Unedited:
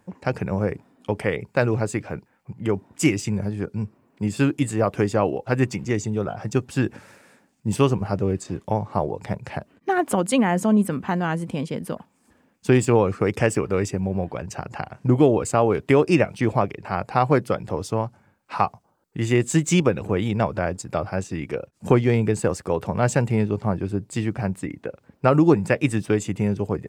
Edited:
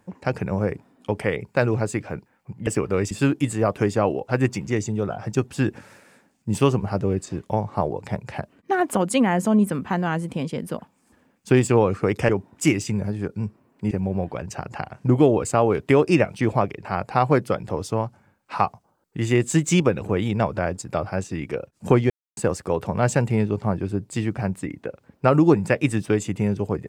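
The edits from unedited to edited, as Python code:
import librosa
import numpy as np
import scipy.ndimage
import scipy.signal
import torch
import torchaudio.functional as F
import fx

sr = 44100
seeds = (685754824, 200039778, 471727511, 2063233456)

y = fx.edit(x, sr, fx.swap(start_s=2.67, length_s=1.62, other_s=13.47, other_length_s=0.44),
    fx.silence(start_s=22.1, length_s=0.27), tone=tone)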